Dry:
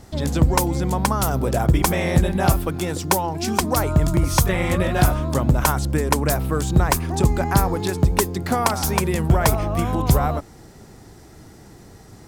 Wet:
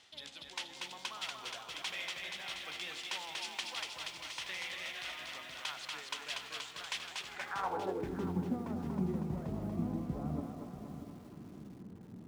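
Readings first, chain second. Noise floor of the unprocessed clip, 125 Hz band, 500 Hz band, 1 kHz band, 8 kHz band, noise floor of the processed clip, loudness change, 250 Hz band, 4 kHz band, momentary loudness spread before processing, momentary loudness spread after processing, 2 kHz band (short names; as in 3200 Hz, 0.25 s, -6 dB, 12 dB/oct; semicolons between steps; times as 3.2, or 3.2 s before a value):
-45 dBFS, -24.0 dB, -21.5 dB, -21.0 dB, -21.5 dB, -52 dBFS, -19.5 dB, -17.5 dB, -8.5 dB, 4 LU, 11 LU, -13.0 dB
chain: reverse; compressor 10:1, threshold -25 dBFS, peak gain reduction 15.5 dB; reverse; de-hum 68.15 Hz, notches 12; on a send: thinning echo 0.238 s, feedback 70%, high-pass 410 Hz, level -3 dB; on the sum: careless resampling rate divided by 3×, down none, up hold; band-pass sweep 3100 Hz -> 210 Hz, 7.27–8.2; resonator 92 Hz, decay 1.6 s, harmonics all, mix 60%; lo-fi delay 0.637 s, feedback 35%, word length 10-bit, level -12 dB; gain +8 dB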